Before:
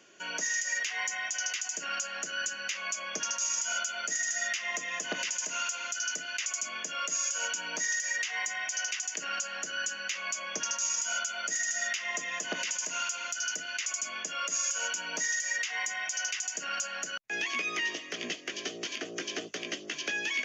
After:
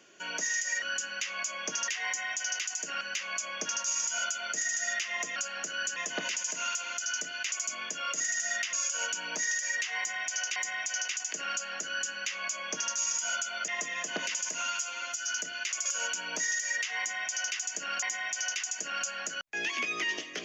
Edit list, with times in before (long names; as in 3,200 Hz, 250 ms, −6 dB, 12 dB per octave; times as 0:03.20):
0:01.95–0:02.55: move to 0:04.90
0:08.39–0:08.97: repeat, 2 plays
0:09.70–0:10.76: duplicate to 0:00.82
0:11.51–0:12.04: move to 0:07.14
0:12.97–0:13.42: time-stretch 1.5×
0:13.99–0:14.66: remove
0:15.79–0:16.83: repeat, 2 plays